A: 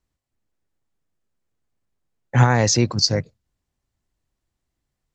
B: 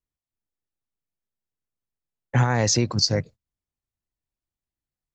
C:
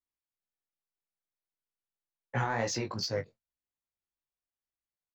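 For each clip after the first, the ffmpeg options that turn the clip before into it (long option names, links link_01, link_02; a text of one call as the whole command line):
ffmpeg -i in.wav -af "agate=range=-14dB:threshold=-39dB:ratio=16:detection=peak,acompressor=threshold=-16dB:ratio=6" out.wav
ffmpeg -i in.wav -filter_complex "[0:a]asplit=2[link_01][link_02];[link_02]highpass=frequency=720:poles=1,volume=12dB,asoftclip=type=tanh:threshold=-6dB[link_03];[link_01][link_03]amix=inputs=2:normalize=0,lowpass=frequency=2000:poles=1,volume=-6dB,flanger=delay=16:depth=3.4:speed=2.6,asplit=2[link_04][link_05];[link_05]adelay=22,volume=-12dB[link_06];[link_04][link_06]amix=inputs=2:normalize=0,volume=-7.5dB" out.wav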